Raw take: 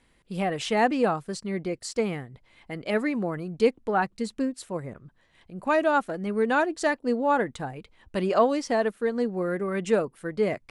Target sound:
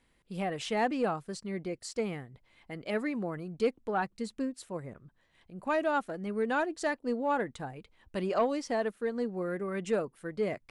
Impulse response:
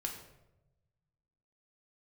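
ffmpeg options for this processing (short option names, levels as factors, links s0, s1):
-af "asoftclip=type=tanh:threshold=0.282,volume=0.501"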